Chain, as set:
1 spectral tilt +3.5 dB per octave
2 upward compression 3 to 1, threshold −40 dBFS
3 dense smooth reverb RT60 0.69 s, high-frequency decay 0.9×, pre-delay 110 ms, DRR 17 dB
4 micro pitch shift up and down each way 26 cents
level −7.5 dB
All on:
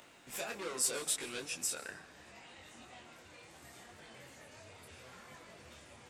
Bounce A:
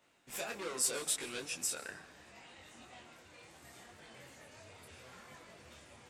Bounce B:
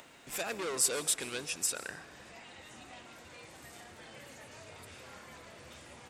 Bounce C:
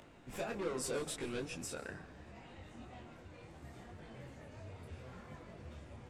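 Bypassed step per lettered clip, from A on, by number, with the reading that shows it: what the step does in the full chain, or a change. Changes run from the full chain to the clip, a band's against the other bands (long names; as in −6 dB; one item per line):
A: 2, change in momentary loudness spread +1 LU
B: 4, change in integrated loudness +4.0 LU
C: 1, 8 kHz band −12.5 dB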